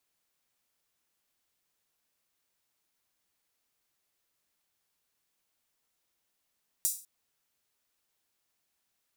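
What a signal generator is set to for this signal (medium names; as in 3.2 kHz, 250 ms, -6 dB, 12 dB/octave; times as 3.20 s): open hi-hat length 0.20 s, high-pass 7.5 kHz, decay 0.37 s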